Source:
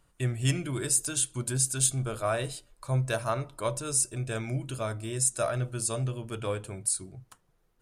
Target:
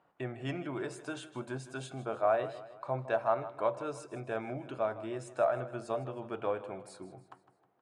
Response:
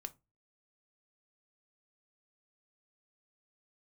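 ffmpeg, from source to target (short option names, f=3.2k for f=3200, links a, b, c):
-filter_complex "[0:a]lowpass=1.9k,equalizer=f=760:t=o:w=0.62:g=9.5,asplit=2[a][b];[b]acompressor=threshold=-36dB:ratio=6,volume=-0.5dB[c];[a][c]amix=inputs=2:normalize=0,highpass=240,aecho=1:1:157|314|471|628:0.168|0.0823|0.0403|0.0198,volume=-5dB"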